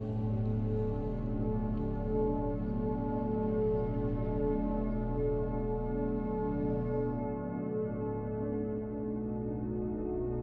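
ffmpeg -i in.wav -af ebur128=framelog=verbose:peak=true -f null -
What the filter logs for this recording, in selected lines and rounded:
Integrated loudness:
  I:         -34.2 LUFS
  Threshold: -44.2 LUFS
Loudness range:
  LRA:         2.4 LU
  Threshold: -54.0 LUFS
  LRA low:   -35.6 LUFS
  LRA high:  -33.2 LUFS
True peak:
  Peak:      -20.3 dBFS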